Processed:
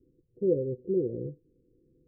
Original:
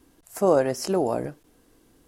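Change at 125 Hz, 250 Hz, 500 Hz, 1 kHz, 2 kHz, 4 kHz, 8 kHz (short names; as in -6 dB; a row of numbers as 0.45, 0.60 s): -2.0 dB, -4.0 dB, -6.5 dB, under -40 dB, under -40 dB, under -40 dB, under -40 dB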